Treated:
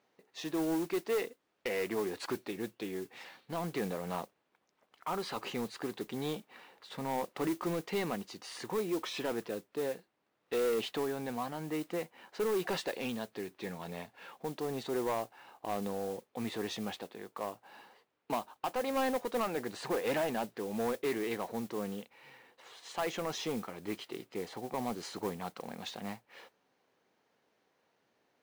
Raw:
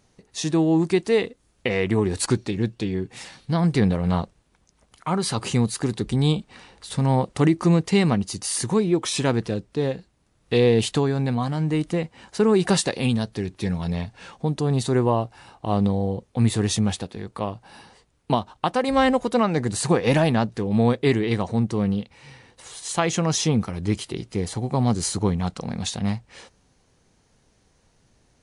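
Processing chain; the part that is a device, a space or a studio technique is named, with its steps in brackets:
carbon microphone (band-pass filter 360–3,100 Hz; soft clipping −20 dBFS, distortion −11 dB; noise that follows the level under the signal 17 dB)
level −6.5 dB

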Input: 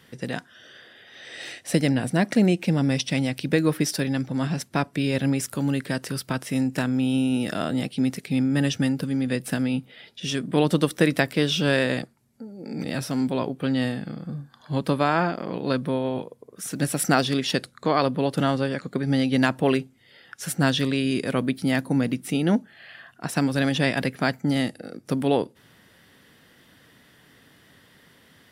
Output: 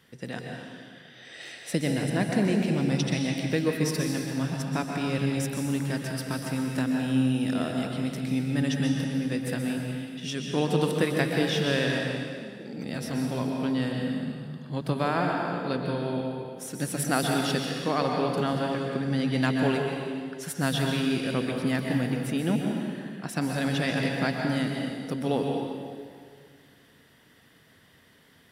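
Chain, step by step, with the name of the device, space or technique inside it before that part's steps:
stairwell (convolution reverb RT60 2.0 s, pre-delay 119 ms, DRR 0.5 dB)
level −6 dB

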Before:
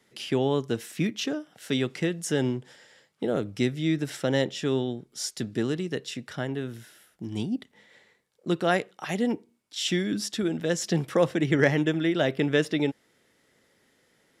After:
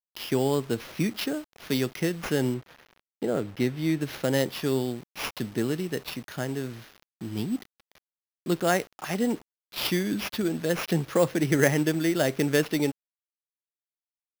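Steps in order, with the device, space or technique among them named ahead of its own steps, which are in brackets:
early 8-bit sampler (sample-rate reduction 8,100 Hz, jitter 0%; bit reduction 8 bits)
0:02.54–0:04.01: bass and treble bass −1 dB, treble −7 dB

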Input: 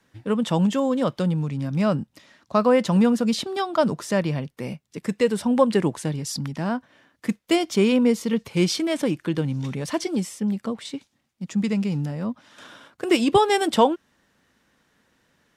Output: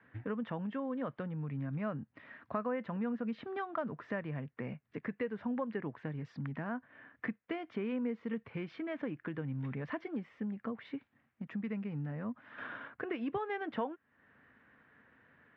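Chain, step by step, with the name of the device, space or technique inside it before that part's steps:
bass amplifier (downward compressor 3 to 1, threshold −39 dBFS, peak gain reduction 20 dB; loudspeaker in its box 85–2,200 Hz, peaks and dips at 180 Hz −7 dB, 350 Hz −6 dB, 560 Hz −4 dB, 860 Hz −4 dB, 1,700 Hz +4 dB)
level +2 dB

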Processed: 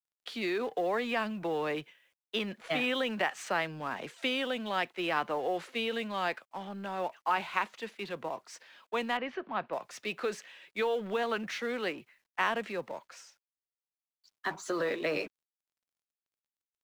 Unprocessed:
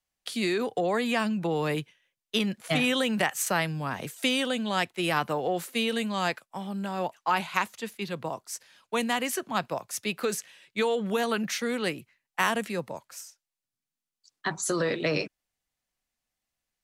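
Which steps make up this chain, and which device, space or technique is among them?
phone line with mismatched companding (band-pass filter 300–3,300 Hz; mu-law and A-law mismatch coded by mu)
0:09.17–0:09.73: high-frequency loss of the air 300 metres
level −4 dB

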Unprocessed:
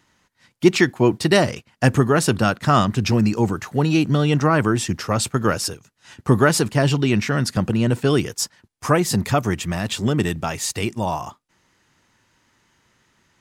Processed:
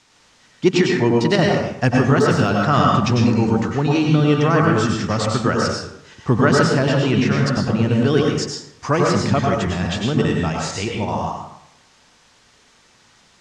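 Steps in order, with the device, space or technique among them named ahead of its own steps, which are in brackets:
worn cassette (low-pass filter 8,600 Hz 12 dB per octave; tape wow and flutter; tape dropouts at 0:00.82/0:01.36/0:11.05, 25 ms −6 dB; white noise bed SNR 31 dB)
low-pass filter 6,900 Hz 24 dB per octave
0:02.20–0:02.68: de-essing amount 55%
dense smooth reverb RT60 0.76 s, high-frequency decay 0.55×, pre-delay 85 ms, DRR −1 dB
level −1.5 dB

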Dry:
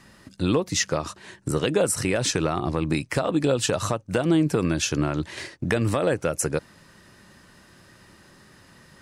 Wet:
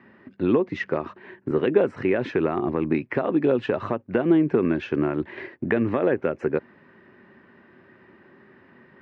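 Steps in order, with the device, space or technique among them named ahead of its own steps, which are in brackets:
bass cabinet (loudspeaker in its box 80–2,100 Hz, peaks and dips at 240 Hz +9 dB, 380 Hz +10 dB, 1,300 Hz −4 dB)
spectral tilt +2 dB per octave

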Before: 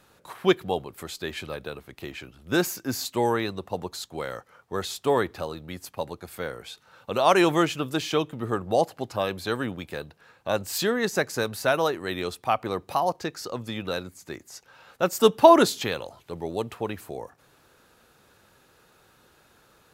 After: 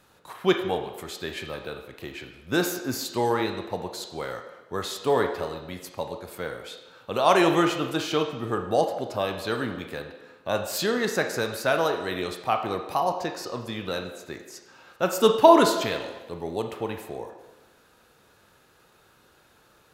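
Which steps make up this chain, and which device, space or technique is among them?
filtered reverb send (on a send: high-pass filter 300 Hz 12 dB per octave + low-pass filter 4,800 Hz 12 dB per octave + convolution reverb RT60 1.1 s, pre-delay 18 ms, DRR 4.5 dB)
on the sum: level −1 dB

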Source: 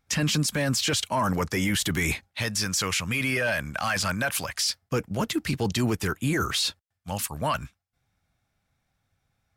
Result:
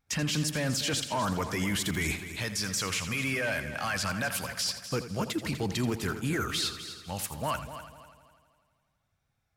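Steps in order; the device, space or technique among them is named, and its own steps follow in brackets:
multi-head tape echo (echo machine with several playback heads 83 ms, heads first and third, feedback 51%, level −12.5 dB; tape wow and flutter 24 cents)
level −5 dB

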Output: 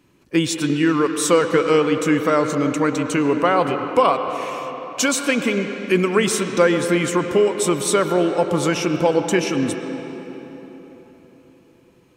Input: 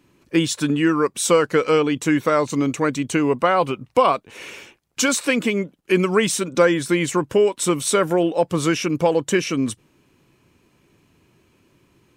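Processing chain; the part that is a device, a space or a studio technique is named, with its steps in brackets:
filtered reverb send (on a send: high-pass filter 190 Hz + low-pass filter 4,300 Hz 12 dB per octave + convolution reverb RT60 4.1 s, pre-delay 99 ms, DRR 6 dB)

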